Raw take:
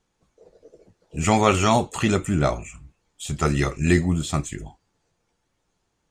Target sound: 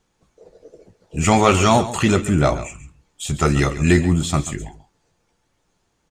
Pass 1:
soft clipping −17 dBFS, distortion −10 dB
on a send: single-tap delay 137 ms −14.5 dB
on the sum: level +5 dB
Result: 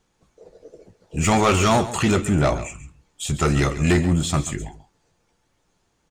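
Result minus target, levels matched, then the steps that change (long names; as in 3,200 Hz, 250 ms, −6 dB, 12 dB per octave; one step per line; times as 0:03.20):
soft clipping: distortion +9 dB
change: soft clipping −9 dBFS, distortion −19 dB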